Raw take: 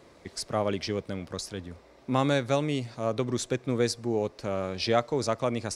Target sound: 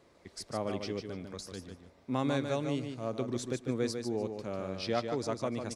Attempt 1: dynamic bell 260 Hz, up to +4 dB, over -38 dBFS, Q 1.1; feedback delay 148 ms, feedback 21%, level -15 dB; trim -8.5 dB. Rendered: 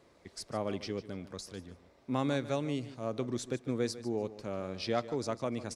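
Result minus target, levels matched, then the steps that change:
echo-to-direct -8.5 dB
change: feedback delay 148 ms, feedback 21%, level -6.5 dB

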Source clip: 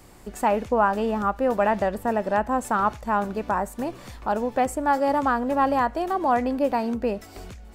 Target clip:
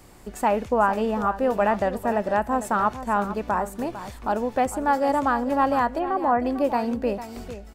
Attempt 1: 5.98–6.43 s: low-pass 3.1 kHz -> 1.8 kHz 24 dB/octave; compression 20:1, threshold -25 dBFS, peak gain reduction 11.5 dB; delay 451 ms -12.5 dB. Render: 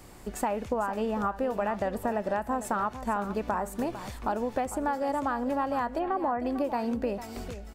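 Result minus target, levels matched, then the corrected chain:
compression: peak gain reduction +11.5 dB
5.98–6.43 s: low-pass 3.1 kHz -> 1.8 kHz 24 dB/octave; delay 451 ms -12.5 dB

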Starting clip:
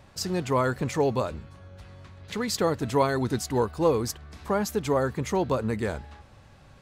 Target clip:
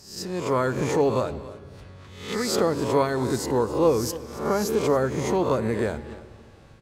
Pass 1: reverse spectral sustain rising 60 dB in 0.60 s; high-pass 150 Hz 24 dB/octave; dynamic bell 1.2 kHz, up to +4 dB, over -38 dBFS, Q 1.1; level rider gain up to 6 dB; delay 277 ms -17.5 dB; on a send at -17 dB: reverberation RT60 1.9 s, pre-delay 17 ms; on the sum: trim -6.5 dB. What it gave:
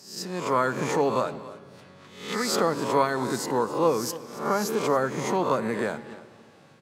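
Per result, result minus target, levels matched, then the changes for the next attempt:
125 Hz band -4.5 dB; 1 kHz band +4.0 dB
remove: high-pass 150 Hz 24 dB/octave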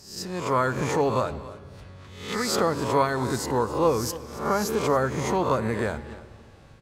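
1 kHz band +3.5 dB
change: dynamic bell 370 Hz, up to +4 dB, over -38 dBFS, Q 1.1

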